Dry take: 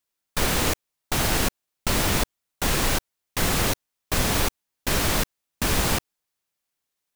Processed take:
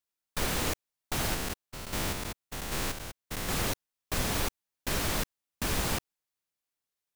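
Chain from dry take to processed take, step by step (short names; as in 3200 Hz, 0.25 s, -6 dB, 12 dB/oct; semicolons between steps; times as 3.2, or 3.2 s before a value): 1.34–3.49 stepped spectrum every 0.2 s; gain -7.5 dB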